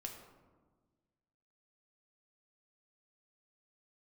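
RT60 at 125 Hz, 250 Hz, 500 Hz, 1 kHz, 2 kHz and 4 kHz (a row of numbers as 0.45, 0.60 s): 1.9, 1.8, 1.5, 1.3, 0.90, 0.60 s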